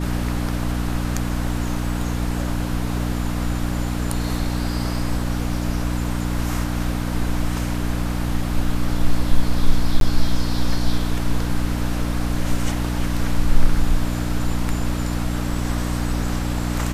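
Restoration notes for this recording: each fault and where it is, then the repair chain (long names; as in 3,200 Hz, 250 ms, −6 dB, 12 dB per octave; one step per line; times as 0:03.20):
mains hum 60 Hz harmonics 5 −24 dBFS
0:10.00–0:10.01: drop-out 12 ms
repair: hum removal 60 Hz, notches 5
repair the gap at 0:10.00, 12 ms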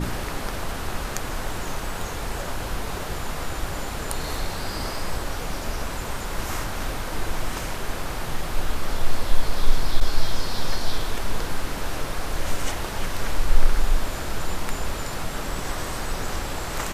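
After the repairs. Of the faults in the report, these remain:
none of them is left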